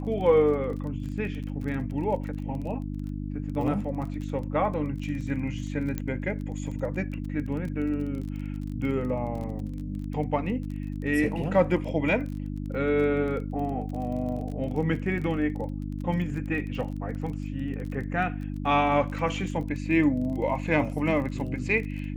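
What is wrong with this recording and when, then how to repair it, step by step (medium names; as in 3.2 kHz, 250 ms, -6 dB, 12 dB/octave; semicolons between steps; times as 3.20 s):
crackle 24 per s -35 dBFS
hum 50 Hz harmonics 6 -33 dBFS
5.98 s: pop -17 dBFS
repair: de-click; de-hum 50 Hz, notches 6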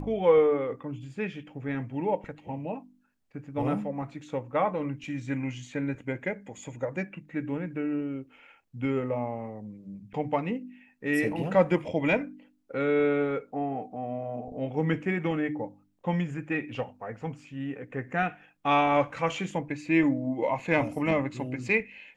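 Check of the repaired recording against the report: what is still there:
nothing left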